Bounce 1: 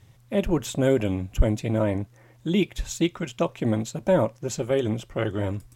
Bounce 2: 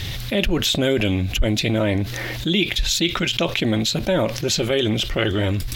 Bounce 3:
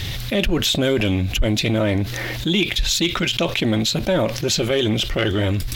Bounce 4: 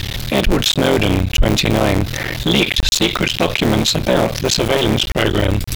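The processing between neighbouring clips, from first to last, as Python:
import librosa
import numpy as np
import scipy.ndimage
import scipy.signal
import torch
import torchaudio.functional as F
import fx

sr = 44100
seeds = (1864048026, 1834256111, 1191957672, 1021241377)

y1 = fx.graphic_eq(x, sr, hz=(125, 250, 500, 1000, 4000, 8000), db=(-10, -5, -6, -10, 9, -10))
y1 = fx.env_flatten(y1, sr, amount_pct=70)
y2 = fx.leveller(y1, sr, passes=1)
y2 = F.gain(torch.from_numpy(y2), -2.5).numpy()
y3 = fx.cycle_switch(y2, sr, every=3, mode='muted')
y3 = F.gain(torch.from_numpy(y3), 6.0).numpy()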